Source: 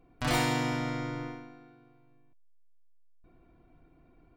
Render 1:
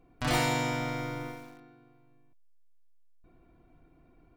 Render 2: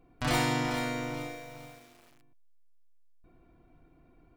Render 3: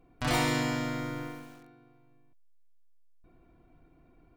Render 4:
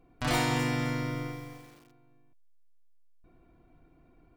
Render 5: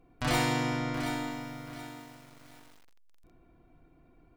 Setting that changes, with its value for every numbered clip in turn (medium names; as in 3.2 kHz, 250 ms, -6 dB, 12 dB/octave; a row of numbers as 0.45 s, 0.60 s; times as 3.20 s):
bit-crushed delay, time: 87 ms, 433 ms, 142 ms, 259 ms, 727 ms